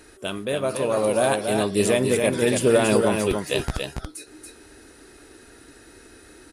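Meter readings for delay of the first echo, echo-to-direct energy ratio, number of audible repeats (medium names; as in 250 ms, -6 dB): 282 ms, -5.0 dB, 1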